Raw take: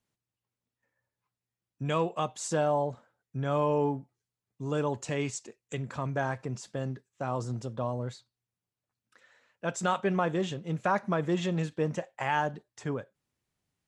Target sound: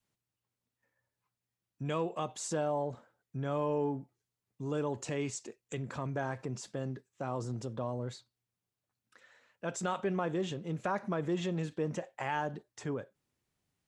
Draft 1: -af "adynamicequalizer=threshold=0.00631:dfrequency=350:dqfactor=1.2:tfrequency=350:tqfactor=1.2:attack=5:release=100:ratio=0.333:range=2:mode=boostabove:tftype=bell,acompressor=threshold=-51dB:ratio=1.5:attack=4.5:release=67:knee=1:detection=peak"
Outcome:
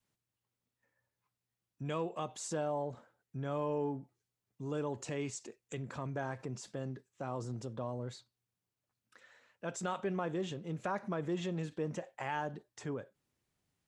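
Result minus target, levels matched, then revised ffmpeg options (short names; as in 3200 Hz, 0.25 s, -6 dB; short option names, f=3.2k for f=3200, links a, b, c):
compressor: peak gain reduction +3 dB
-af "adynamicequalizer=threshold=0.00631:dfrequency=350:dqfactor=1.2:tfrequency=350:tqfactor=1.2:attack=5:release=100:ratio=0.333:range=2:mode=boostabove:tftype=bell,acompressor=threshold=-42dB:ratio=1.5:attack=4.5:release=67:knee=1:detection=peak"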